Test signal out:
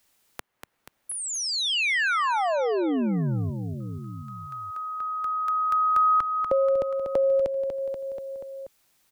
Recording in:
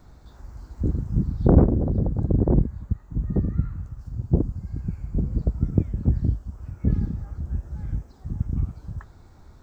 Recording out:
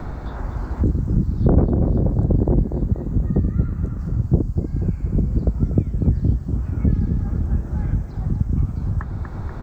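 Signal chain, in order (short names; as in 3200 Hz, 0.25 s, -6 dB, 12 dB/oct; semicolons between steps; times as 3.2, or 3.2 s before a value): feedback echo 0.241 s, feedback 47%, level -9.5 dB; three-band squash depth 70%; gain +4 dB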